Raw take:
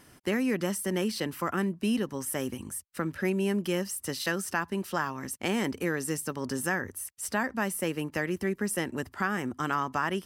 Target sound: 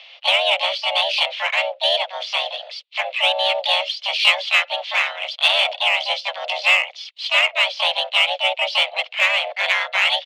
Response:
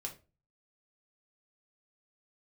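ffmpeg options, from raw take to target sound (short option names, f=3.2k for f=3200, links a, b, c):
-filter_complex "[0:a]asplit=4[a][b][c][d];[b]asetrate=22050,aresample=44100,atempo=2,volume=-4dB[e];[c]asetrate=37084,aresample=44100,atempo=1.18921,volume=-14dB[f];[d]asetrate=58866,aresample=44100,atempo=0.749154,volume=-2dB[g];[a][e][f][g]amix=inputs=4:normalize=0,highpass=f=180:t=q:w=0.5412,highpass=f=180:t=q:w=1.307,lowpass=f=3.2k:t=q:w=0.5176,lowpass=f=3.2k:t=q:w=0.7071,lowpass=f=3.2k:t=q:w=1.932,afreqshift=370,aexciter=amount=5.3:drive=9.6:freq=2.4k,volume=2dB"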